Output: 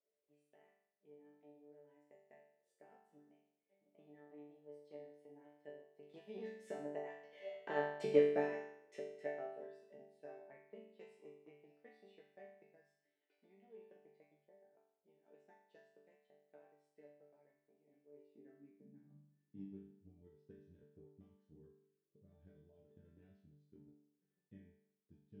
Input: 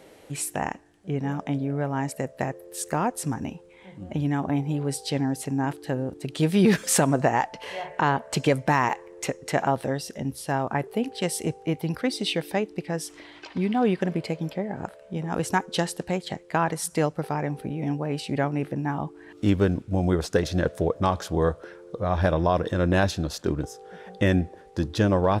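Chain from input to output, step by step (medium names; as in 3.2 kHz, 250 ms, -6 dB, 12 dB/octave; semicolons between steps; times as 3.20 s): Doppler pass-by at 8.07 s, 14 m/s, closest 5.1 m; FFT filter 340 Hz 0 dB, 1.1 kHz -27 dB, 1.9 kHz -10 dB, 11 kHz -26 dB; transient shaper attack +7 dB, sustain -5 dB; high-pass sweep 590 Hz -> 90 Hz, 17.77–19.86 s; chord resonator D3 sus4, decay 0.71 s; trim +12.5 dB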